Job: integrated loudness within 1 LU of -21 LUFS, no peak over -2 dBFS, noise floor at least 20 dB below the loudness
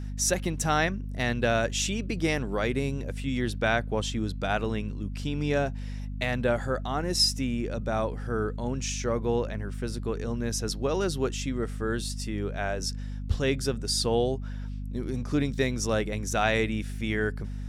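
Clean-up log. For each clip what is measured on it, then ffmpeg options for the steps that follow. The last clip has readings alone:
hum 50 Hz; highest harmonic 250 Hz; hum level -32 dBFS; loudness -29.0 LUFS; peak level -10.5 dBFS; loudness target -21.0 LUFS
-> -af "bandreject=f=50:t=h:w=4,bandreject=f=100:t=h:w=4,bandreject=f=150:t=h:w=4,bandreject=f=200:t=h:w=4,bandreject=f=250:t=h:w=4"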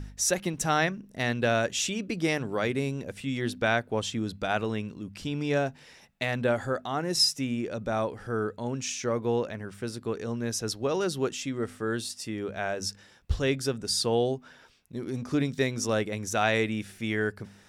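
hum not found; loudness -29.5 LUFS; peak level -11.5 dBFS; loudness target -21.0 LUFS
-> -af "volume=2.66"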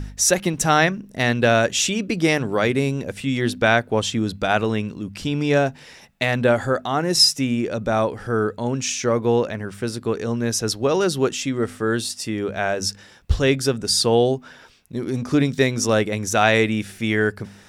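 loudness -21.0 LUFS; peak level -3.0 dBFS; noise floor -47 dBFS

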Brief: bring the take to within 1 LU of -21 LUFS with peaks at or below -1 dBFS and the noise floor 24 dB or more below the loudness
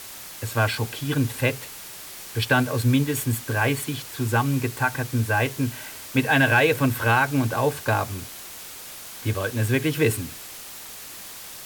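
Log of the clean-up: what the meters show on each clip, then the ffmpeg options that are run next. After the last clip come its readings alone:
noise floor -40 dBFS; noise floor target -48 dBFS; loudness -23.5 LUFS; peak level -7.0 dBFS; loudness target -21.0 LUFS
-> -af "afftdn=nr=8:nf=-40"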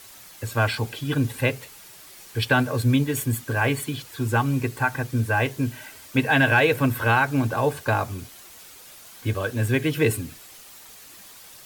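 noise floor -46 dBFS; noise floor target -48 dBFS
-> -af "afftdn=nr=6:nf=-46"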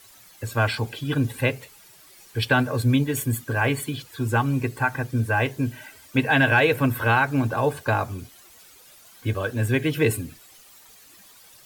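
noise floor -51 dBFS; loudness -23.5 LUFS; peak level -7.5 dBFS; loudness target -21.0 LUFS
-> -af "volume=1.33"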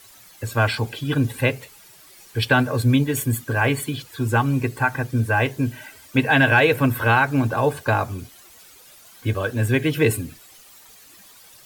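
loudness -21.0 LUFS; peak level -5.0 dBFS; noise floor -48 dBFS

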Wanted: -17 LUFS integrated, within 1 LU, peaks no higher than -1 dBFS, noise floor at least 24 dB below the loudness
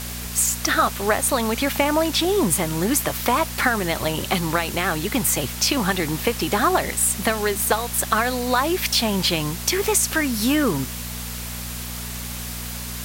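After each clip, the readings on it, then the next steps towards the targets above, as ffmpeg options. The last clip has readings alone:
hum 60 Hz; highest harmonic 240 Hz; hum level -32 dBFS; noise floor -31 dBFS; noise floor target -46 dBFS; loudness -21.5 LUFS; peak level -4.0 dBFS; loudness target -17.0 LUFS
-> -af "bandreject=f=60:t=h:w=4,bandreject=f=120:t=h:w=4,bandreject=f=180:t=h:w=4,bandreject=f=240:t=h:w=4"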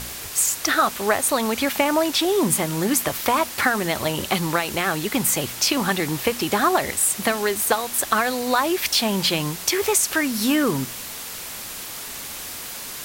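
hum not found; noise floor -34 dBFS; noise floor target -46 dBFS
-> -af "afftdn=nr=12:nf=-34"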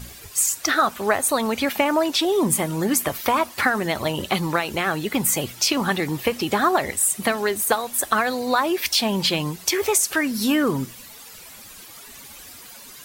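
noise floor -43 dBFS; noise floor target -46 dBFS
-> -af "afftdn=nr=6:nf=-43"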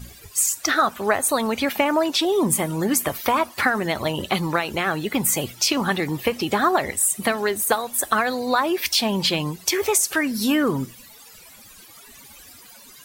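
noise floor -46 dBFS; loudness -21.5 LUFS; peak level -4.0 dBFS; loudness target -17.0 LUFS
-> -af "volume=1.68,alimiter=limit=0.891:level=0:latency=1"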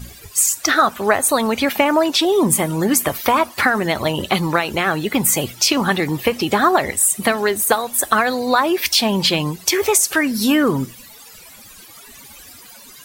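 loudness -17.0 LUFS; peak level -1.0 dBFS; noise floor -42 dBFS

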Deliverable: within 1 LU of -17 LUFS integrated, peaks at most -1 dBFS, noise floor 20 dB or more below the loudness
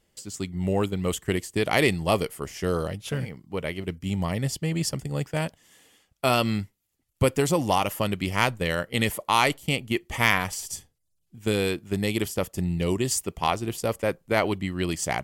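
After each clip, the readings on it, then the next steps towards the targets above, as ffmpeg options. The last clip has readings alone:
loudness -26.5 LUFS; peak level -7.0 dBFS; loudness target -17.0 LUFS
-> -af "volume=2.99,alimiter=limit=0.891:level=0:latency=1"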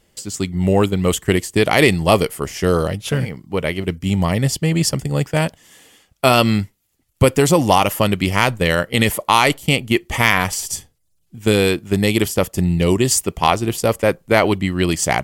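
loudness -17.5 LUFS; peak level -1.0 dBFS; noise floor -64 dBFS

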